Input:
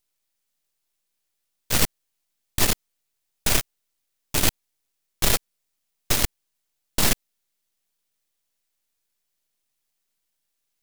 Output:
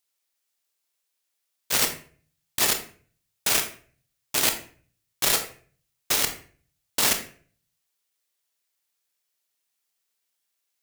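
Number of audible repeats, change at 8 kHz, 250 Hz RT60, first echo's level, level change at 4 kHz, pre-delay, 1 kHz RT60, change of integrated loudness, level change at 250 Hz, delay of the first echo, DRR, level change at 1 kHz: no echo, +1.0 dB, 0.55 s, no echo, +0.5 dB, 23 ms, 0.40 s, 0.0 dB, -7.0 dB, no echo, 5.0 dB, 0.0 dB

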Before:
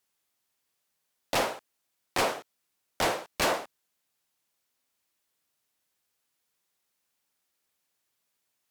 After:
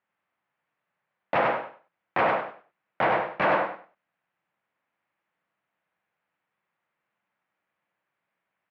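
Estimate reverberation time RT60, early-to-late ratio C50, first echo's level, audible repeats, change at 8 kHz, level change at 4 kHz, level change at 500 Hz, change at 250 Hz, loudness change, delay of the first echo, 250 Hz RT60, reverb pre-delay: no reverb, no reverb, -3.0 dB, 3, under -30 dB, -8.5 dB, +5.0 dB, +3.0 dB, +3.5 dB, 97 ms, no reverb, no reverb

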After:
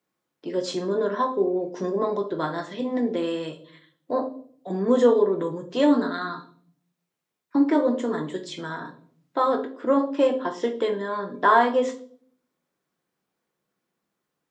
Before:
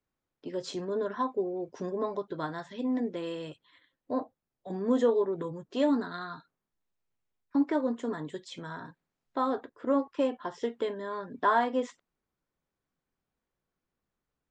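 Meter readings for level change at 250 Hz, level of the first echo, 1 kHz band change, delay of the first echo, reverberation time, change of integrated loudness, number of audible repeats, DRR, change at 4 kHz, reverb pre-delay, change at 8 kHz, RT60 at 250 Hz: +6.5 dB, no echo, +7.5 dB, no echo, 0.55 s, +7.5 dB, no echo, 5.0 dB, +7.5 dB, 6 ms, no reading, 0.80 s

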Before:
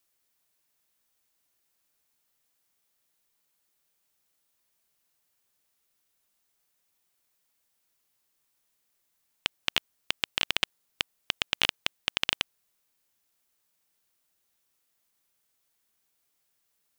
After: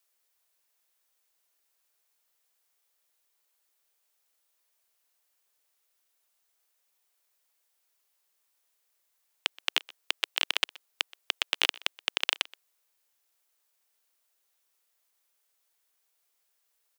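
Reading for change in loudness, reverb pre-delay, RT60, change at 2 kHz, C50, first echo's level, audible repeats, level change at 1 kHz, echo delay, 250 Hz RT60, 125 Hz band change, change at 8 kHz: 0.0 dB, no reverb, no reverb, 0.0 dB, no reverb, -23.0 dB, 1, 0.0 dB, 125 ms, no reverb, under -30 dB, 0.0 dB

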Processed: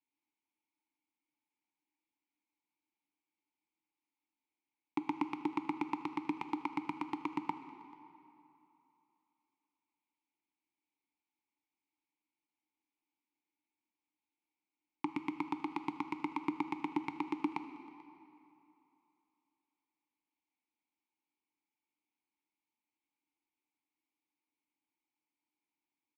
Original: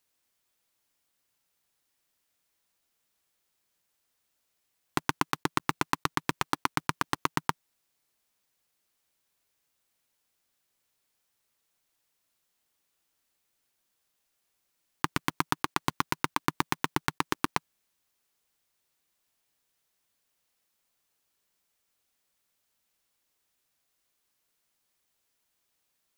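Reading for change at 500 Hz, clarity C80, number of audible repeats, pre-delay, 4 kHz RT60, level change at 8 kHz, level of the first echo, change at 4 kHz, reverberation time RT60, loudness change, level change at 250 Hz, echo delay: -7.5 dB, 10.0 dB, 1, 15 ms, 2.0 s, under -25 dB, -22.0 dB, -18.5 dB, 2.9 s, -8.0 dB, -1.0 dB, 438 ms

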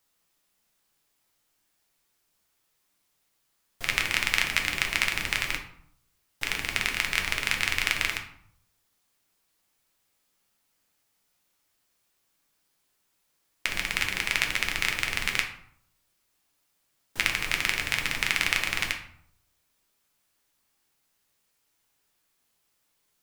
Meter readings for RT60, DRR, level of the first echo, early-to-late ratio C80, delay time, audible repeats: 0.65 s, 2.5 dB, no echo, 12.0 dB, no echo, no echo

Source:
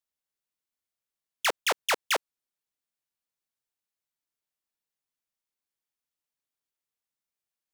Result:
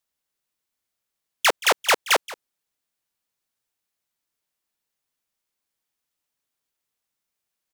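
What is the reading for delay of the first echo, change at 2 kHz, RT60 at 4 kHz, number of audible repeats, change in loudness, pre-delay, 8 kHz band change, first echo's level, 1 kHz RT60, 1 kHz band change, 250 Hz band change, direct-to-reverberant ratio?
176 ms, +7.5 dB, no reverb, 1, +7.5 dB, no reverb, +7.5 dB, -18.5 dB, no reverb, +7.5 dB, +7.5 dB, no reverb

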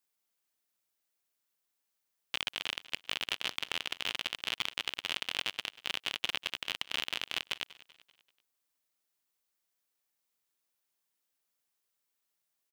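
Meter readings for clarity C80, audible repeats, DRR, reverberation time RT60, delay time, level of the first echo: no reverb, 3, no reverb, no reverb, 193 ms, -19.0 dB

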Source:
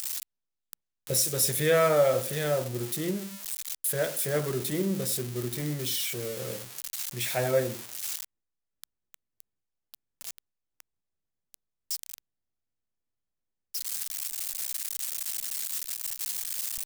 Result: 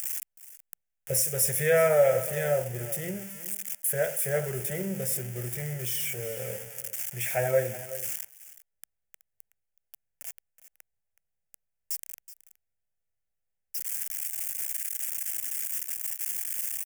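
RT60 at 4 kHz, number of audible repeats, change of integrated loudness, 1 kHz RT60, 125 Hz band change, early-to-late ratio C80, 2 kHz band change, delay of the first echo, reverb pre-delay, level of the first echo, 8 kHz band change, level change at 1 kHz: no reverb, 1, +0.5 dB, no reverb, -0.5 dB, no reverb, +1.5 dB, 373 ms, no reverb, -15.5 dB, 0.0 dB, -1.5 dB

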